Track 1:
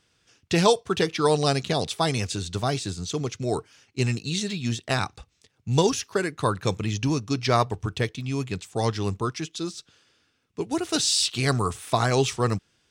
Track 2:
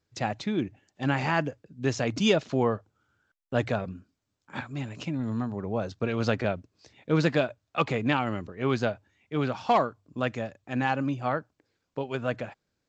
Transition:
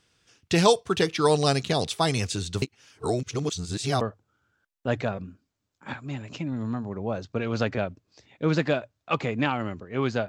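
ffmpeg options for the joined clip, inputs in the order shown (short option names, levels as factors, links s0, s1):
-filter_complex "[0:a]apad=whole_dur=10.28,atrim=end=10.28,asplit=2[s0][s1];[s0]atrim=end=2.622[s2];[s1]atrim=start=2.618:end=4.012,asetpts=PTS-STARTPTS,areverse[s3];[1:a]atrim=start=2.678:end=8.95[s4];[s2][s3]acrossfade=d=0.004:c1=hsin:c2=hsin[s5];[s5][s4]acrossfade=d=0.004:c1=hsin:c2=hsin"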